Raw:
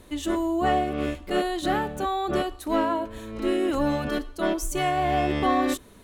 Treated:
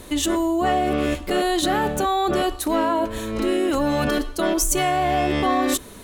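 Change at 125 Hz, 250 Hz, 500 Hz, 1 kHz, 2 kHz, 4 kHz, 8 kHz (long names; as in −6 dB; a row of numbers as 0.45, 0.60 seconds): +3.5, +4.0, +4.0, +4.0, +4.5, +7.0, +12.0 decibels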